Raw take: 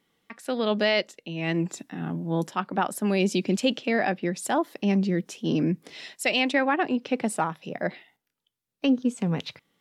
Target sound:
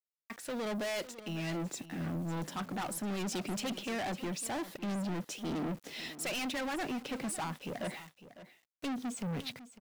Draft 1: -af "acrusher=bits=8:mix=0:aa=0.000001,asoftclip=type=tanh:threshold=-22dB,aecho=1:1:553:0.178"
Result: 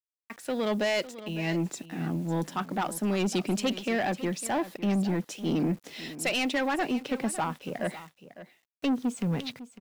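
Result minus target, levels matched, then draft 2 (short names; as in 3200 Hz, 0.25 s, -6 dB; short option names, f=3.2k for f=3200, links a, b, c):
soft clip: distortion -8 dB
-af "acrusher=bits=8:mix=0:aa=0.000001,asoftclip=type=tanh:threshold=-34dB,aecho=1:1:553:0.178"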